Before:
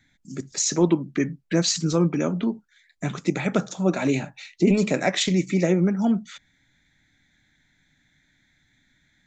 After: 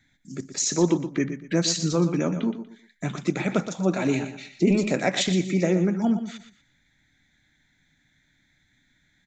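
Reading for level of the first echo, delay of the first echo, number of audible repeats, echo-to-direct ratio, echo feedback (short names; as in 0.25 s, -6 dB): -10.5 dB, 0.12 s, 3, -10.0 dB, 28%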